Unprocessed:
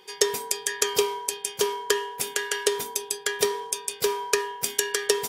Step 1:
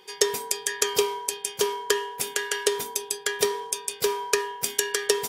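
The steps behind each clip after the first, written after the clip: nothing audible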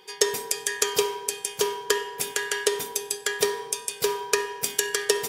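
shoebox room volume 1600 m³, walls mixed, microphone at 0.51 m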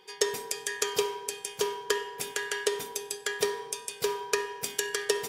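high shelf 6900 Hz -5 dB; gain -4 dB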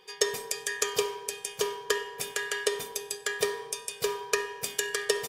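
comb 1.7 ms, depth 38%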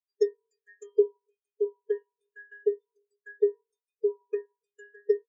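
spectral expander 4:1; gain -2 dB

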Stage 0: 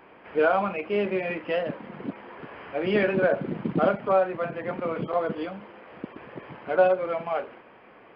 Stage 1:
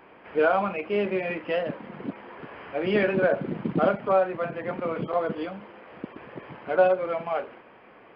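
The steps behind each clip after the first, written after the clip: nothing audible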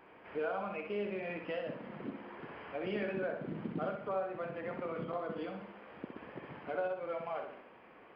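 compressor 2.5:1, threshold -31 dBFS, peak gain reduction 11 dB; on a send: flutter echo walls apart 10.8 m, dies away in 0.57 s; on the sum: gain -7 dB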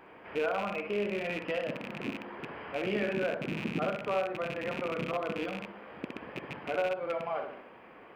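rattling part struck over -49 dBFS, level -33 dBFS; gain +5 dB

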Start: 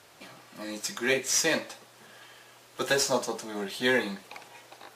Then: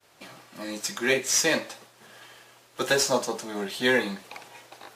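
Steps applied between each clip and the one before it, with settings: expander -50 dBFS; gain +2.5 dB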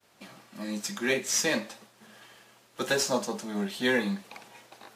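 bell 210 Hz +11 dB 0.33 oct; gain -4 dB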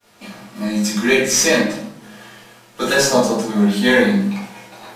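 reverb RT60 0.60 s, pre-delay 4 ms, DRR -7 dB; gain +4.5 dB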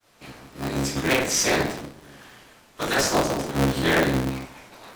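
cycle switcher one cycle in 3, inverted; gain -7 dB

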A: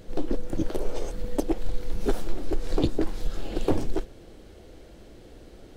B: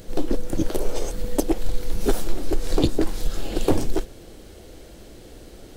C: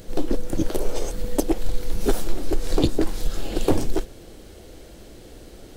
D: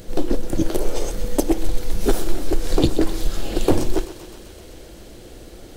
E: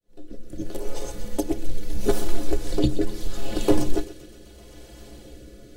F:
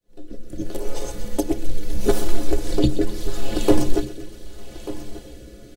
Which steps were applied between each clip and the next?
high shelf 5500 Hz +10.5 dB; gain +4 dB
nothing audible
thinning echo 0.129 s, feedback 80%, high-pass 560 Hz, level -13 dB; on a send at -16.5 dB: reverb RT60 0.75 s, pre-delay 3 ms; on the sum: gain +2.5 dB
opening faded in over 1.53 s; metallic resonator 62 Hz, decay 0.21 s, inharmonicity 0.03; rotary speaker horn 0.75 Hz; gain +3.5 dB
echo 1.19 s -15.5 dB; gain +3 dB

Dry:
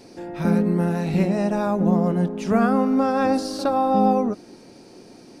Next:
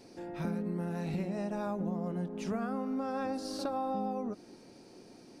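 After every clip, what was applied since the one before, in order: compressor, threshold -23 dBFS, peak gain reduction 9.5 dB; gain -8.5 dB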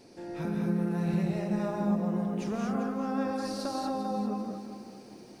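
non-linear reverb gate 0.26 s rising, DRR 0 dB; lo-fi delay 0.395 s, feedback 35%, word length 10-bit, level -11 dB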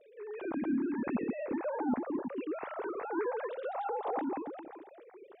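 sine-wave speech; gain -4.5 dB

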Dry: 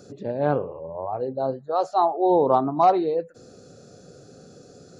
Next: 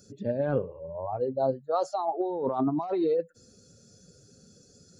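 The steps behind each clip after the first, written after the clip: per-bin expansion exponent 1.5; negative-ratio compressor -27 dBFS, ratio -1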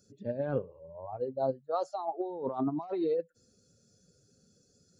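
upward expander 1.5:1, over -36 dBFS; gain -3.5 dB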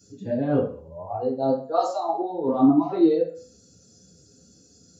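reverb RT60 0.40 s, pre-delay 3 ms, DRR -5.5 dB; gain -1 dB

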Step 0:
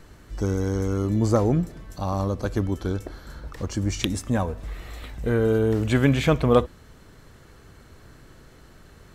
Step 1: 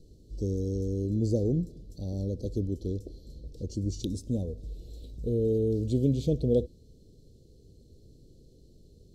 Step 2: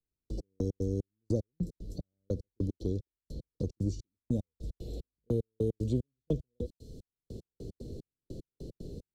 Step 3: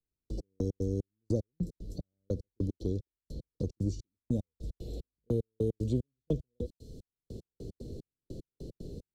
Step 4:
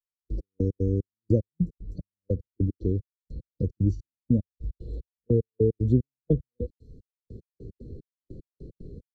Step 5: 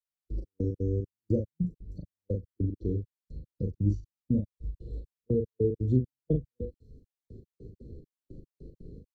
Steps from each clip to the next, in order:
Chebyshev band-stop 480–4200 Hz, order 3; high shelf 6800 Hz -11 dB; gain -5 dB
step gate "...x..x.xx" 150 bpm -60 dB; three-band squash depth 70%
nothing audible
spectral expander 1.5:1; gain +7.5 dB
doubler 39 ms -5 dB; gain -5 dB

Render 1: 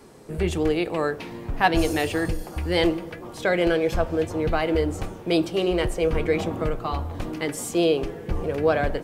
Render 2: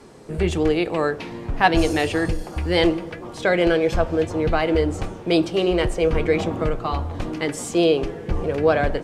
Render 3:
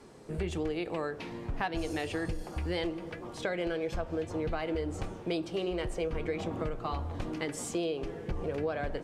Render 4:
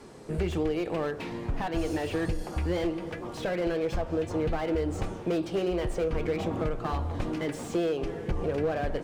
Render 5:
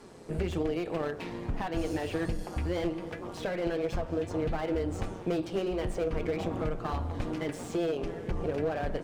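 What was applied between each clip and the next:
LPF 8600 Hz 12 dB/oct; gain +3 dB
compressor 6:1, threshold -22 dBFS, peak gain reduction 11.5 dB; gain -7.5 dB
slew limiter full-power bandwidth 20 Hz; gain +5 dB
AM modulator 180 Hz, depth 35%

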